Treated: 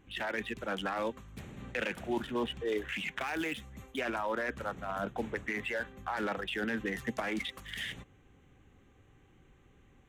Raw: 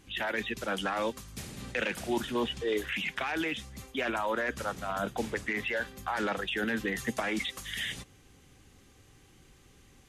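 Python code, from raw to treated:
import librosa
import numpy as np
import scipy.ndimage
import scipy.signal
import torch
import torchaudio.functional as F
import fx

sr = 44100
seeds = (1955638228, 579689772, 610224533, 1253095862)

y = fx.wiener(x, sr, points=9)
y = fx.high_shelf(y, sr, hz=fx.line((3.19, 10000.0), (3.98, 6700.0)), db=11.0, at=(3.19, 3.98), fade=0.02)
y = y * librosa.db_to_amplitude(-2.5)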